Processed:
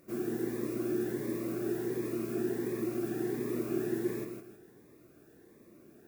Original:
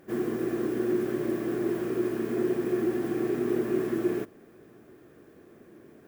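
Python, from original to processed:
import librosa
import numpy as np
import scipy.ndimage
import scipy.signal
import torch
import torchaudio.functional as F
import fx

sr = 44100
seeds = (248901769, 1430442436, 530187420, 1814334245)

p1 = fx.high_shelf(x, sr, hz=4200.0, db=7.0)
p2 = fx.notch(p1, sr, hz=3100.0, q=7.5)
p3 = p2 + fx.echo_feedback(p2, sr, ms=159, feedback_pct=32, wet_db=-6.0, dry=0)
p4 = fx.notch_cascade(p3, sr, direction='rising', hz=1.4)
y = F.gain(torch.from_numpy(p4), -5.5).numpy()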